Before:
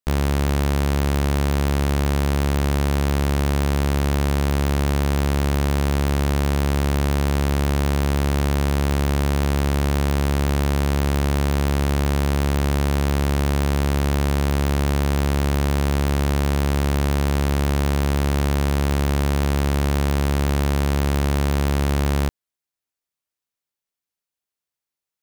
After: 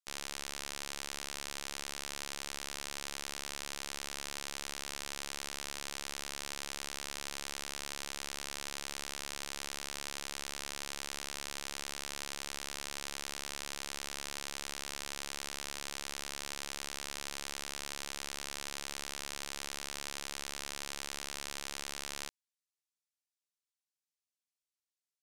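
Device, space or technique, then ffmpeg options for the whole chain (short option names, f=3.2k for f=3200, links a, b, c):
piezo pickup straight into a mixer: -af "lowpass=7k,aderivative,volume=-1dB"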